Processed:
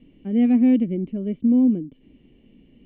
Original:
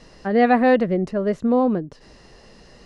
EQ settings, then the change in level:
formant resonators in series i
+6.0 dB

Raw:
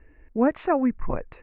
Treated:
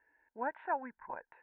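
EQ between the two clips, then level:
pair of resonant band-passes 1,200 Hz, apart 0.73 octaves
−1.5 dB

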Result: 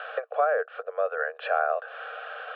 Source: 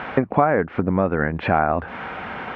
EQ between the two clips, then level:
Chebyshev high-pass with heavy ripple 450 Hz, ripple 3 dB
phaser with its sweep stopped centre 1,400 Hz, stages 8
−2.5 dB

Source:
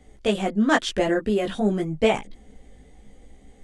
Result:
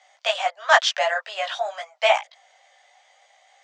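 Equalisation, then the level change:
Butterworth high-pass 610 Hz 72 dB per octave
low-pass with resonance 6,000 Hz, resonance Q 1.8
high-frequency loss of the air 75 metres
+6.5 dB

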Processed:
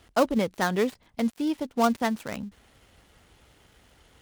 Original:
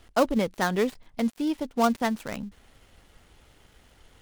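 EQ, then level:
high-pass filter 48 Hz
0.0 dB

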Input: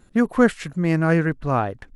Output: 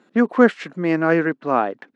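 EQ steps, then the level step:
high-pass filter 230 Hz 24 dB per octave
high-frequency loss of the air 150 metres
+4.0 dB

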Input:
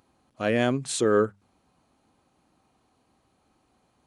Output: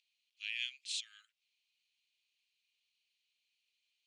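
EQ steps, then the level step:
Butterworth high-pass 2,500 Hz 48 dB per octave
head-to-tape spacing loss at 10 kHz 27 dB
+7.0 dB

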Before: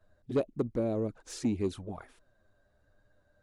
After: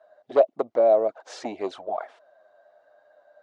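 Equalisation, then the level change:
high-pass with resonance 660 Hz, resonance Q 4.9
high-frequency loss of the air 140 metres
notch filter 2,500 Hz, Q 17
+8.5 dB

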